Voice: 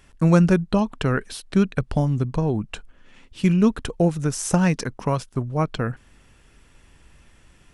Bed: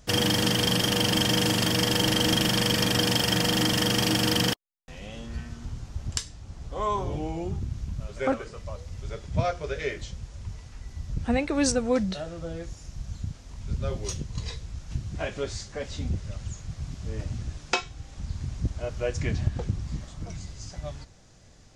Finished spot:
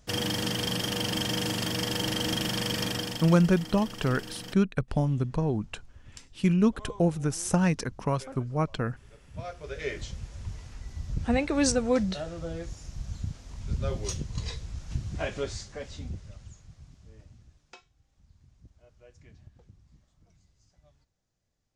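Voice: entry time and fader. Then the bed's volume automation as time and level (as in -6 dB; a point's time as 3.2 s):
3.00 s, -5.0 dB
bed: 2.87 s -6 dB
3.48 s -18.5 dB
9.18 s -18.5 dB
9.97 s -0.5 dB
15.37 s -0.5 dB
17.88 s -26.5 dB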